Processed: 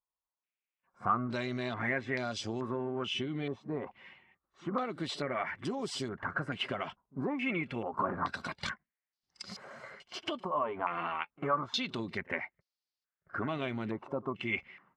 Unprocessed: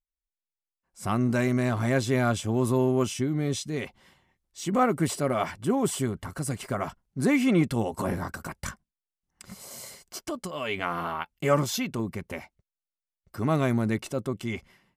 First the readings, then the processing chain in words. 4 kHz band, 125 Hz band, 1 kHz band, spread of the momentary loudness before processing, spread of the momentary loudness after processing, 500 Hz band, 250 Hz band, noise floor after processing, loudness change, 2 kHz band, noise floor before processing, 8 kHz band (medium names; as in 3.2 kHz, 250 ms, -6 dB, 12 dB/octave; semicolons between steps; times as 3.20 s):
-1.0 dB, -13.5 dB, -3.5 dB, 15 LU, 12 LU, -8.5 dB, -11.0 dB, under -85 dBFS, -8.0 dB, -2.5 dB, under -85 dBFS, -15.5 dB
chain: coarse spectral quantiser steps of 15 dB; high-pass 230 Hz 6 dB/octave; compression 6:1, threshold -33 dBFS, peak gain reduction 14.5 dB; pre-echo 49 ms -22 dB; step-sequenced low-pass 2.3 Hz 1–4.8 kHz